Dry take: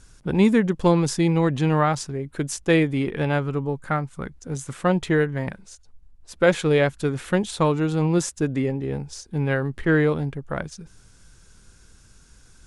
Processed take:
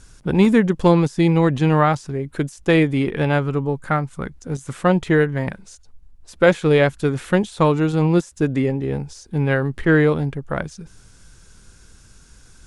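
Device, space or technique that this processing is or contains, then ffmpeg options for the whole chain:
de-esser from a sidechain: -filter_complex "[0:a]asplit=2[link_01][link_02];[link_02]highpass=frequency=5300:width=0.5412,highpass=frequency=5300:width=1.3066,apad=whole_len=558451[link_03];[link_01][link_03]sidechaincompress=threshold=-44dB:ratio=16:attack=3.3:release=26,volume=4dB"

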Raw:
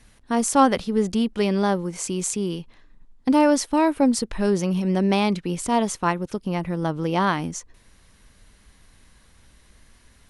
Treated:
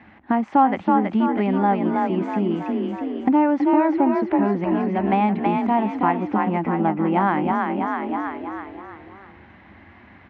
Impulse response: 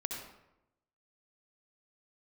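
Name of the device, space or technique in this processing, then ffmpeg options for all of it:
bass amplifier: -filter_complex "[0:a]asettb=1/sr,asplit=3[link_01][link_02][link_03];[link_01]atrim=end=4.644[link_04];[link_02]atrim=start=4.64:end=5.13,asetpts=PTS-STARTPTS,afade=type=in:duration=0.004:curve=qsin,afade=type=out:start_time=0.486:duration=0.004:curve=qsin,lowshelf=frequency=410:gain=-9.5[link_05];[link_03]atrim=start=5.126[link_06];[link_04][link_05]acrossfade=duration=0.004:curve1=hsin:curve2=qsin[link_07];[link_07][link_06]acrossfade=duration=0.004:curve1=qsin:curve2=hsin,asplit=7[link_08][link_09][link_10][link_11][link_12][link_13][link_14];[link_09]adelay=324,afreqshift=32,volume=-5dB[link_15];[link_10]adelay=648,afreqshift=64,volume=-11.4dB[link_16];[link_11]adelay=972,afreqshift=96,volume=-17.8dB[link_17];[link_12]adelay=1296,afreqshift=128,volume=-24.1dB[link_18];[link_13]adelay=1620,afreqshift=160,volume=-30.5dB[link_19];[link_14]adelay=1944,afreqshift=192,volume=-36.9dB[link_20];[link_08][link_15][link_16][link_17][link_18][link_19][link_20]amix=inputs=7:normalize=0,acompressor=threshold=-32dB:ratio=3,highpass=frequency=88:width=0.5412,highpass=frequency=88:width=1.3066,equalizer=frequency=130:width_type=q:width=4:gain=-10,equalizer=frequency=210:width_type=q:width=4:gain=4,equalizer=frequency=320:width_type=q:width=4:gain=7,equalizer=frequency=470:width_type=q:width=4:gain=-7,equalizer=frequency=800:width_type=q:width=4:gain=10,equalizer=frequency=2000:width_type=q:width=4:gain=4,lowpass=frequency=2400:width=0.5412,lowpass=frequency=2400:width=1.3066,volume=9dB"

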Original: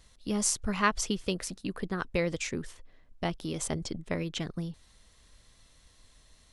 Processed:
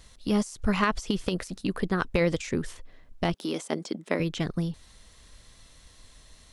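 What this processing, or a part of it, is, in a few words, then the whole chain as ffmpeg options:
de-esser from a sidechain: -filter_complex "[0:a]asplit=2[link_01][link_02];[link_02]highpass=6500,apad=whole_len=287733[link_03];[link_01][link_03]sidechaincompress=threshold=-47dB:ratio=8:attack=1.2:release=41,asettb=1/sr,asplit=3[link_04][link_05][link_06];[link_04]atrim=end=3.344[link_07];[link_05]atrim=start=3.34:end=4.2,asetpts=PTS-STARTPTS,afade=type=in:duration=0.004:curve=qsin,afade=type=out:start_time=0.856:duration=0.004:curve=qsin,highpass=frequency=220:width=0.5412,highpass=frequency=220:width=1.3066[link_08];[link_06]atrim=start=4.196[link_09];[link_07][link_08]acrossfade=duration=0.004:curve1=hsin:curve2=qsin[link_10];[link_10][link_09]acrossfade=duration=0.004:curve1=qsin:curve2=hsin,volume=6.5dB"

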